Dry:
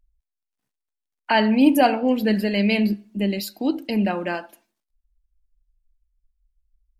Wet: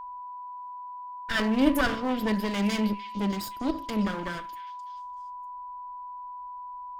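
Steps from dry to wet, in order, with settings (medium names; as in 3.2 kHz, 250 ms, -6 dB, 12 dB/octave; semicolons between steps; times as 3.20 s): comb filter that takes the minimum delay 0.59 ms; repeats whose band climbs or falls 301 ms, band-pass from 2.8 kHz, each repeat 0.7 oct, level -11 dB; whistle 990 Hz -32 dBFS; trim -5 dB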